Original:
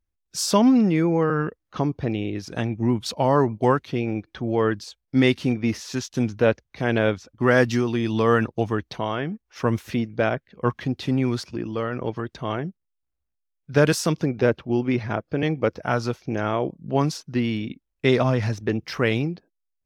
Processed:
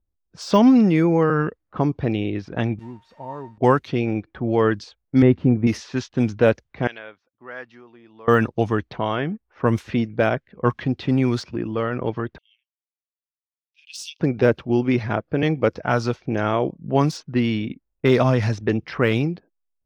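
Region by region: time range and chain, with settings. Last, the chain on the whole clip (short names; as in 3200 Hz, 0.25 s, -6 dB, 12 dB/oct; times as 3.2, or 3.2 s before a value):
2.79–3.58 switching spikes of -15.5 dBFS + resonator 920 Hz, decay 0.3 s, mix 90%
5.22–5.67 Bessel low-pass 910 Hz + low shelf 160 Hz +7.5 dB
6.87–8.28 LPF 4700 Hz + differentiator
12.38–14.2 steep high-pass 2600 Hz 72 dB/oct + high shelf 11000 Hz +10 dB + three-band expander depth 40%
whole clip: low-pass opened by the level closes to 770 Hz, open at -17.5 dBFS; de-esser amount 80%; gain +3 dB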